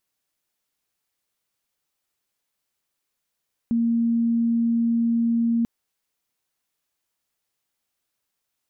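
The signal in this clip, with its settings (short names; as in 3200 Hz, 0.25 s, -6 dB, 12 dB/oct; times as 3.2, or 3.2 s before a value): tone sine 232 Hz -18 dBFS 1.94 s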